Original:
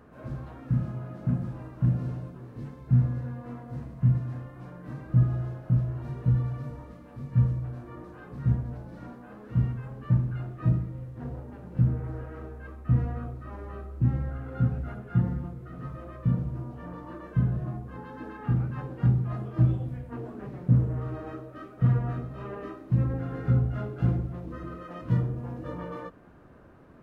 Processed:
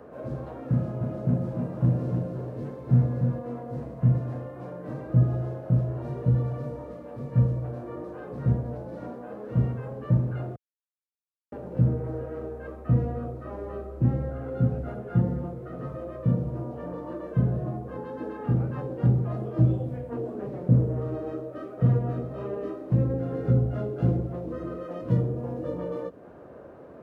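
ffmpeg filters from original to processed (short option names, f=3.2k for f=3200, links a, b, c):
-filter_complex "[0:a]asettb=1/sr,asplit=3[a][b][c];[a]atrim=end=0.714[d];[b]atrim=start=0.71:end=3.39,asetpts=PTS-STARTPTS,afade=t=in:d=0.004:c=qsin,afade=t=out:st=2.676:d=0.004:c=qsin,aecho=1:1:299:0.531,atrim=end_sample=118188[e];[c]atrim=start=3.386[f];[d][e]acrossfade=d=0.004:c1=hsin:c2=qsin[g];[g][f]acrossfade=d=0.004:c1=qsin:c2=hsin,asplit=3[h][i][j];[h]atrim=end=10.56,asetpts=PTS-STARTPTS,afade=t=out:st=10.556:d=0.004:c=hsin[k];[i]atrim=start=10.56:end=11.52,asetpts=PTS-STARTPTS,volume=0[l];[j]atrim=start=11.52,asetpts=PTS-STARTPTS,afade=t=in:d=0.004:c=hsin[m];[k][l][m]concat=n=3:v=0:a=1,highpass=62,equalizer=f=530:t=o:w=1.4:g=14,acrossover=split=410|3000[n][o][p];[o]acompressor=threshold=-39dB:ratio=4[q];[n][q][p]amix=inputs=3:normalize=0"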